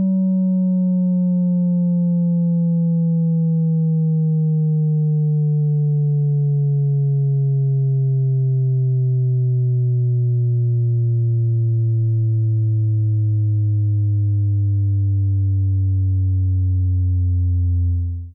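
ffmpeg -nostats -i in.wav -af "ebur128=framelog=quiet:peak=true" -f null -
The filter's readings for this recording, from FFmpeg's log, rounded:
Integrated loudness:
  I:         -18.3 LUFS
  Threshold: -28.3 LUFS
Loudness range:
  LRA:         0.8 LU
  Threshold: -38.2 LUFS
  LRA low:   -18.7 LUFS
  LRA high:  -17.9 LUFS
True peak:
  Peak:      -14.6 dBFS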